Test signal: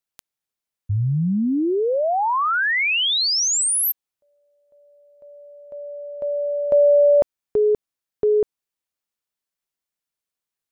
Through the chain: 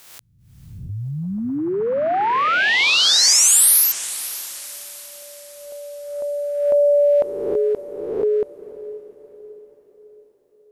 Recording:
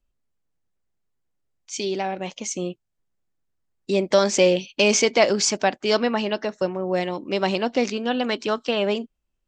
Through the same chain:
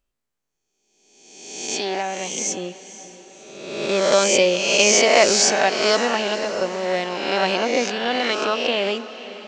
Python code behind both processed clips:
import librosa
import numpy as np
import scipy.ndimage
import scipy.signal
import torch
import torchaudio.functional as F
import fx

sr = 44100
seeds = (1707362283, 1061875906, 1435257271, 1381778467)

y = fx.spec_swells(x, sr, rise_s=1.17)
y = fx.low_shelf(y, sr, hz=270.0, db=-9.5)
y = fx.echo_diffused(y, sr, ms=524, feedback_pct=48, wet_db=-15)
y = F.gain(torch.from_numpy(y), 1.0).numpy()